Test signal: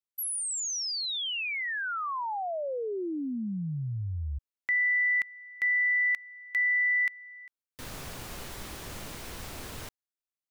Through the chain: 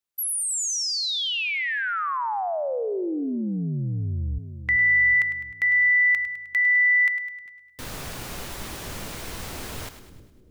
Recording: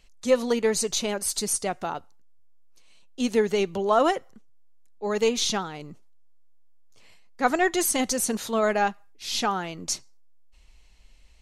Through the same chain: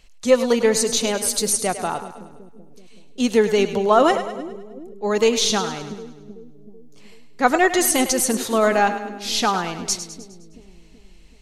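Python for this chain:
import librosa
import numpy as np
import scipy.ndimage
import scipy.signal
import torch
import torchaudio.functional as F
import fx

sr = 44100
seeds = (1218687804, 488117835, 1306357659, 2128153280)

y = fx.echo_split(x, sr, split_hz=420.0, low_ms=379, high_ms=103, feedback_pct=52, wet_db=-11.0)
y = y * 10.0 ** (5.5 / 20.0)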